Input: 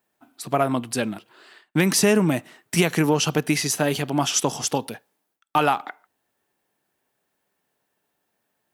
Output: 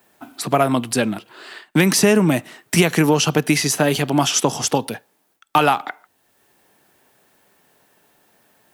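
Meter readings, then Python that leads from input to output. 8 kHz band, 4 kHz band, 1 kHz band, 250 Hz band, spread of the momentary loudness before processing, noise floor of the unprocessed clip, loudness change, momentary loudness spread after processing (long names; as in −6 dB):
+3.5 dB, +4.5 dB, +4.5 dB, +4.5 dB, 11 LU, −76 dBFS, +4.5 dB, 10 LU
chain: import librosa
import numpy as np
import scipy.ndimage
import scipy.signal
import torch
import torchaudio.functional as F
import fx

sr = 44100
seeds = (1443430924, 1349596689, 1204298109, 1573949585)

y = fx.band_squash(x, sr, depth_pct=40)
y = y * librosa.db_to_amplitude(4.5)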